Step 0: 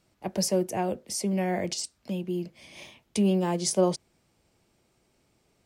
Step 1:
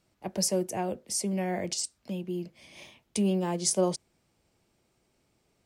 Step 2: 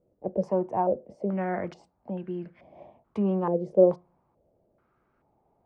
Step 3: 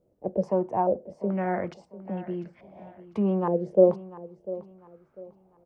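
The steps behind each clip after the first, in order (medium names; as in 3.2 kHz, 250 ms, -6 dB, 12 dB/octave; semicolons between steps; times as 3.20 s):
dynamic bell 8.4 kHz, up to +6 dB, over -44 dBFS, Q 0.92; trim -3 dB
on a send at -23 dB: reverberation RT60 0.40 s, pre-delay 3 ms; on the sum: step-sequenced low-pass 2.3 Hz 510–1600 Hz
feedback delay 697 ms, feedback 32%, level -16.5 dB; trim +1 dB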